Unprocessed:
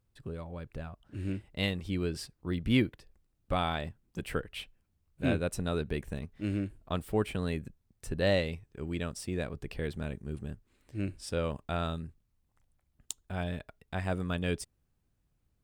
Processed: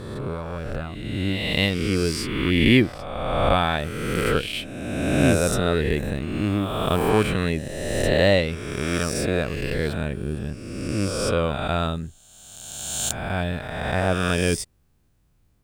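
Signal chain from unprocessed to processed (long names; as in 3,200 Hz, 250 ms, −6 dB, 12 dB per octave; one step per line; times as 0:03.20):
peak hold with a rise ahead of every peak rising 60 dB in 1.72 s
level +8 dB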